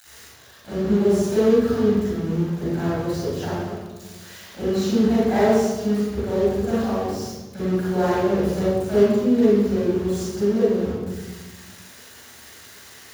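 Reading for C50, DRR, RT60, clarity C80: -6.0 dB, -11.0 dB, 1.3 s, -0.5 dB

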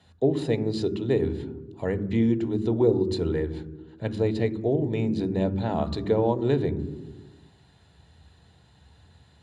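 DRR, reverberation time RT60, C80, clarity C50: 11.0 dB, 1.3 s, 15.5 dB, 14.5 dB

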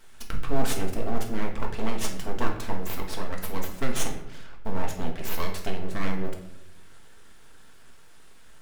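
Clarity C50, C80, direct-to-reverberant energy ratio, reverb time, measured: 8.0 dB, 11.5 dB, 1.5 dB, 0.80 s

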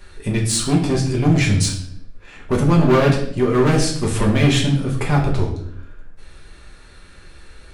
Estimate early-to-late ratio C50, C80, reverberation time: 7.0 dB, 10.0 dB, 0.65 s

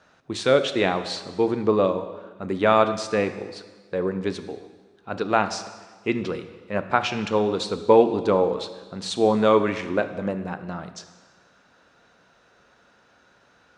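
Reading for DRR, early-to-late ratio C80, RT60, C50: 9.5 dB, 12.5 dB, 1.4 s, 11.5 dB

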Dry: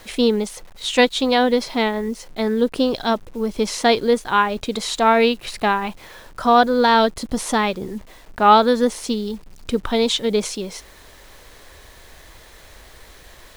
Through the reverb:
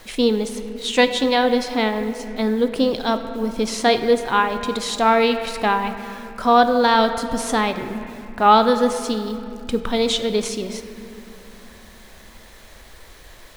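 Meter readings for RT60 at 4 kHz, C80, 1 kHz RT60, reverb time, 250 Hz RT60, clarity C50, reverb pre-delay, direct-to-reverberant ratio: 1.9 s, 10.0 dB, 2.4 s, 2.6 s, 4.0 s, 9.0 dB, 3 ms, 8.0 dB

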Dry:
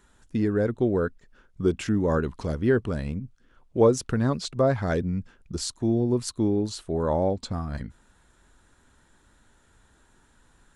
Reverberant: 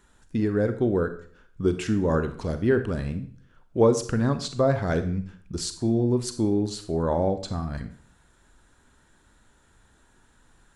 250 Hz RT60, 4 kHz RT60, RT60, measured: 0.55 s, 0.45 s, 0.50 s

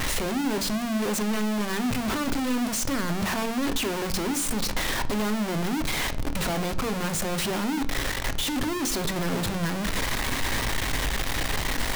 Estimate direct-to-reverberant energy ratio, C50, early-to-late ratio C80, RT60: 9.5 dB, 16.0 dB, 20.5 dB, 0.55 s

